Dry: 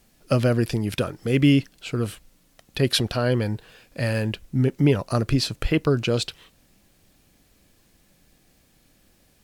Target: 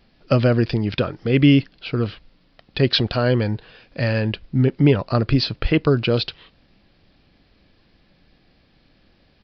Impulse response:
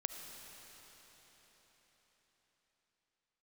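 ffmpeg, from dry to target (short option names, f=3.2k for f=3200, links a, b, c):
-af "aresample=11025,aresample=44100,volume=3.5dB"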